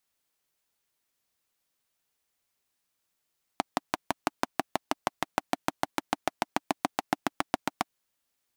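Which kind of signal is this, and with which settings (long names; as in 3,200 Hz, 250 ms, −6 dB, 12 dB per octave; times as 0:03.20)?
pulse-train model of a single-cylinder engine, changing speed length 4.29 s, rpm 700, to 900, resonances 290/730 Hz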